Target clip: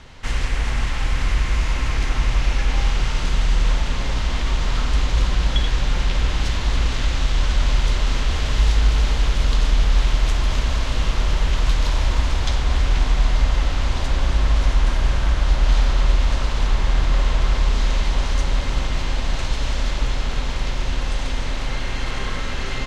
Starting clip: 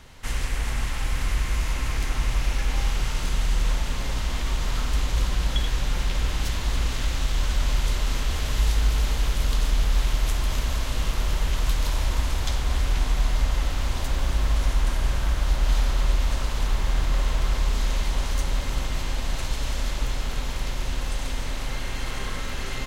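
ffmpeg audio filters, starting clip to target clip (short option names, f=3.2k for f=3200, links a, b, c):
-af "lowpass=5.8k,volume=5dB"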